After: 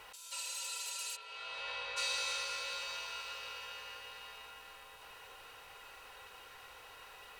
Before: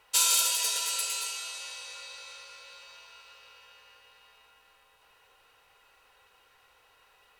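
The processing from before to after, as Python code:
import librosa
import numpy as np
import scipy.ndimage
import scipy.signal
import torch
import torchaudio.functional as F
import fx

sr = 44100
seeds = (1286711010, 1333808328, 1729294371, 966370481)

y = fx.over_compress(x, sr, threshold_db=-42.0, ratio=-1.0)
y = fx.spec_repair(y, sr, seeds[0], start_s=0.34, length_s=0.78, low_hz=490.0, high_hz=9900.0, source='after')
y = fx.air_absorb(y, sr, metres=390.0, at=(1.15, 1.96), fade=0.02)
y = y * librosa.db_to_amplitude(1.0)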